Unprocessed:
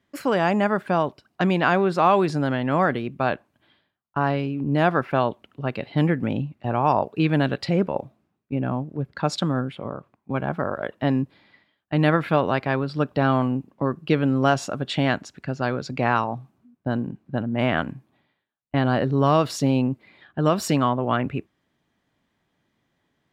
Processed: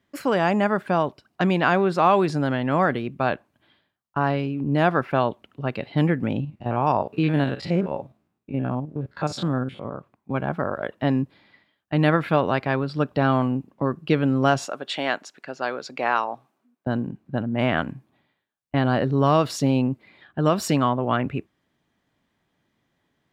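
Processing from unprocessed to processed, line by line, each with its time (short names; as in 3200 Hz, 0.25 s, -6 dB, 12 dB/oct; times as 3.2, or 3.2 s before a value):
6.4–9.95 stepped spectrum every 50 ms
14.65–16.87 HPF 430 Hz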